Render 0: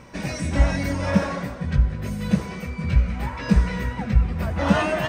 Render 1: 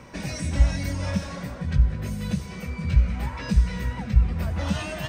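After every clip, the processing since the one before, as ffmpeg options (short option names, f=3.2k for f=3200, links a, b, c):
-filter_complex "[0:a]acrossover=split=150|3000[a][b][c];[b]acompressor=threshold=-34dB:ratio=4[d];[a][d][c]amix=inputs=3:normalize=0"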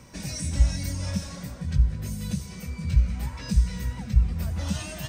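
-af "bass=f=250:g=6,treble=f=4k:g=13,volume=-7.5dB"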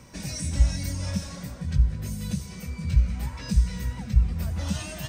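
-af anull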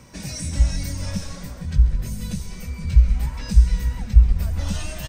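-filter_complex "[0:a]asplit=4[a][b][c][d];[b]adelay=135,afreqshift=-100,volume=-14dB[e];[c]adelay=270,afreqshift=-200,volume=-23.6dB[f];[d]adelay=405,afreqshift=-300,volume=-33.3dB[g];[a][e][f][g]amix=inputs=4:normalize=0,asubboost=boost=5.5:cutoff=51,volume=2dB"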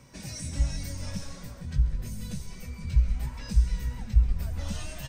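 -af "flanger=delay=7:depth=2.1:regen=63:speed=1.6:shape=triangular,volume=-2.5dB"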